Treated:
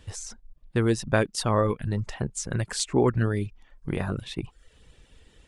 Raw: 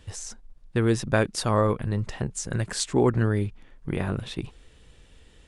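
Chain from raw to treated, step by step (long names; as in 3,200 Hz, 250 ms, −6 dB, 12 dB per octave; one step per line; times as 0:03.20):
reverb reduction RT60 0.56 s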